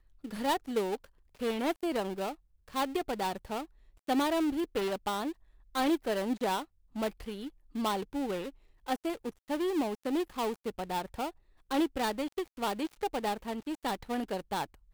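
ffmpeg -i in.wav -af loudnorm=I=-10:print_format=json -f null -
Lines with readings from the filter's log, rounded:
"input_i" : "-34.1",
"input_tp" : "-17.1",
"input_lra" : "2.6",
"input_thresh" : "-44.3",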